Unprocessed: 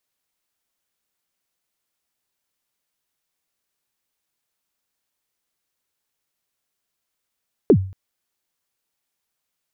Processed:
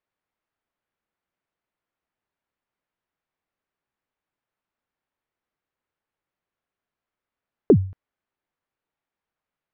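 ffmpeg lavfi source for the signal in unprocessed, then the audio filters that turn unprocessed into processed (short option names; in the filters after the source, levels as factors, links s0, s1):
-f lavfi -i "aevalsrc='0.531*pow(10,-3*t/0.43)*sin(2*PI*(480*0.072/log(95/480)*(exp(log(95/480)*min(t,0.072)/0.072)-1)+95*max(t-0.072,0)))':d=0.23:s=44100"
-af "lowpass=1900"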